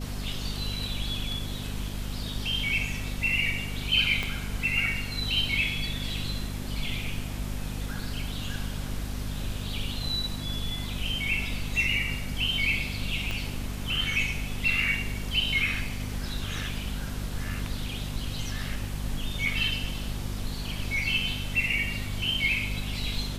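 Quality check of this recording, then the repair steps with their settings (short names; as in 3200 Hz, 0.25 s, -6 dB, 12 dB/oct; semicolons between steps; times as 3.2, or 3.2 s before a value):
hum 50 Hz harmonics 5 -35 dBFS
4.23 pop -16 dBFS
13.31 pop -18 dBFS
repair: de-click; de-hum 50 Hz, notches 5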